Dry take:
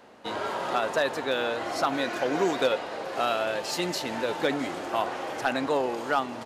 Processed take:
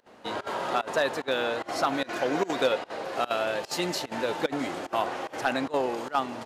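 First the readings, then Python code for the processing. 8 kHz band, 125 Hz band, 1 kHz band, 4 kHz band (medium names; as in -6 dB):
-1.0 dB, -0.5 dB, -0.5 dB, -0.5 dB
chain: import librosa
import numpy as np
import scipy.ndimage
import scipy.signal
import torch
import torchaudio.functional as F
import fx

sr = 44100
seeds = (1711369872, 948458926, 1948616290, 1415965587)

y = fx.volume_shaper(x, sr, bpm=148, per_beat=1, depth_db=-22, release_ms=60.0, shape='slow start')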